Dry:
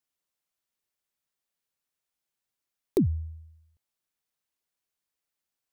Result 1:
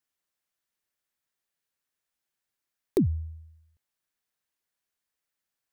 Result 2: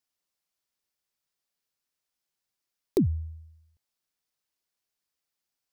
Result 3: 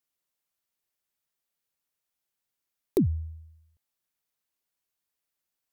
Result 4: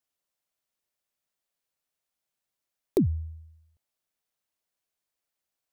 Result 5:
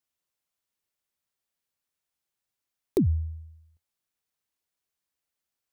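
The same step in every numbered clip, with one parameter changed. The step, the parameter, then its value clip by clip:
parametric band, centre frequency: 1,700, 5,000, 15,000, 630, 84 Hertz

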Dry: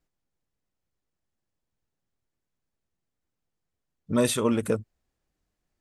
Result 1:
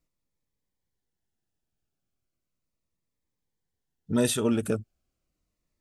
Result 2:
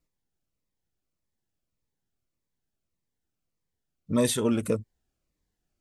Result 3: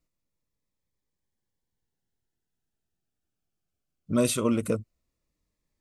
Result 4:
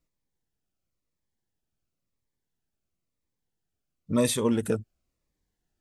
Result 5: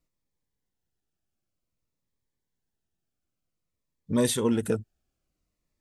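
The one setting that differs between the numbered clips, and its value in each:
phaser whose notches keep moving one way, speed: 0.36, 1.7, 0.2, 0.97, 0.54 Hertz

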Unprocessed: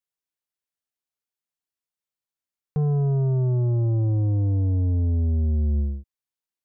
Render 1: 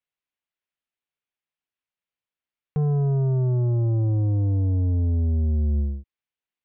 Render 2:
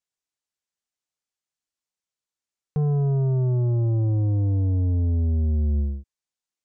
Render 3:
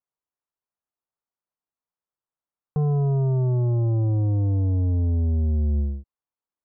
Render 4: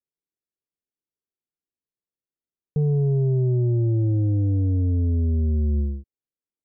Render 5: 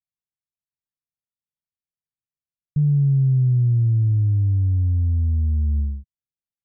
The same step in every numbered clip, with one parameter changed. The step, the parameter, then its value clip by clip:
low-pass with resonance, frequency: 2,800, 7,300, 1,100, 400, 150 Hertz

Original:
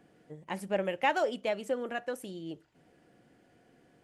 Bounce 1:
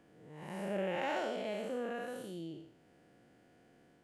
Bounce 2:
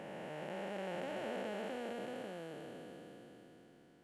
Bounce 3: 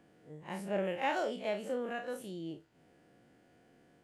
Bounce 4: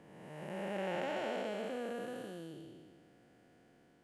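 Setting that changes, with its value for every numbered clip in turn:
spectrum smeared in time, width: 231, 1,720, 82, 594 milliseconds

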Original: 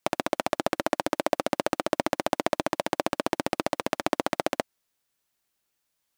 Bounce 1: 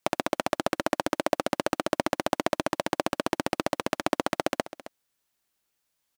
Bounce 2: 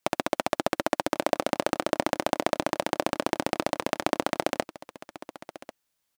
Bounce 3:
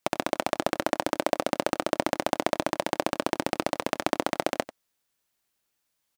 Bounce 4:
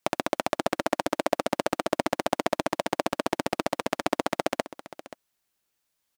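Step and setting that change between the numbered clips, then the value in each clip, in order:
single-tap delay, delay time: 266, 1,093, 92, 529 milliseconds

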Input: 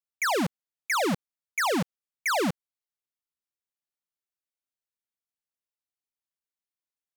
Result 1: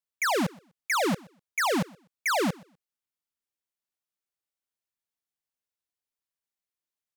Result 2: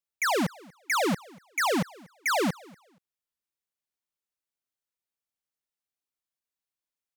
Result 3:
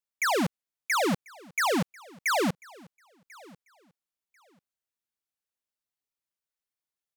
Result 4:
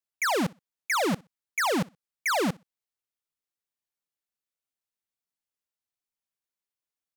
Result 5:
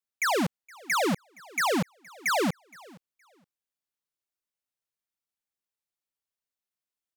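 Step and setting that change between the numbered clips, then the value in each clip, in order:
repeating echo, delay time: 124, 238, 1,042, 62, 468 milliseconds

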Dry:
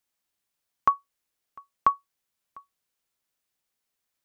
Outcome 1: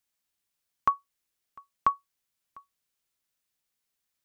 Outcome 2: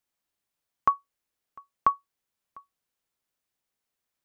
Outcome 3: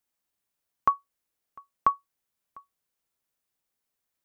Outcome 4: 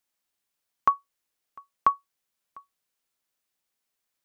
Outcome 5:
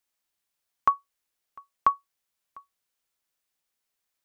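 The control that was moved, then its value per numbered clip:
parametric band, centre frequency: 620, 16,000, 3,800, 64, 160 Hertz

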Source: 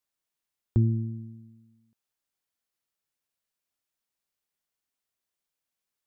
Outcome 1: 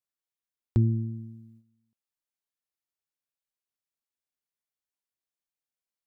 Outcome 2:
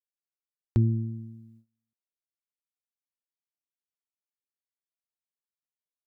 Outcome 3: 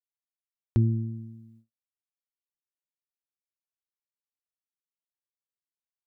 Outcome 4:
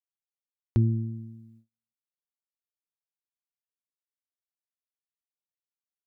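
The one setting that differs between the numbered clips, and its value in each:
noise gate, range: −9, −22, −53, −36 decibels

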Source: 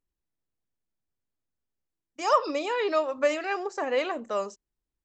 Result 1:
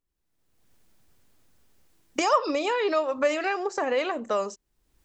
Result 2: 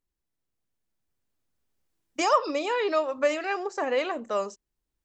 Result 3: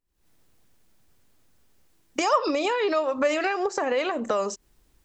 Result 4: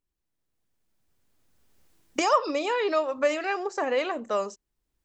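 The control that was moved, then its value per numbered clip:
camcorder AGC, rising by: 33, 5, 87, 13 dB per second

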